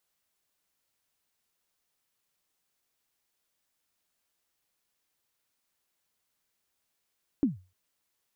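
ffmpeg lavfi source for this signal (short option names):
-f lavfi -i "aevalsrc='0.133*pow(10,-3*t/0.31)*sin(2*PI*(310*0.146/log(92/310)*(exp(log(92/310)*min(t,0.146)/0.146)-1)+92*max(t-0.146,0)))':d=0.3:s=44100"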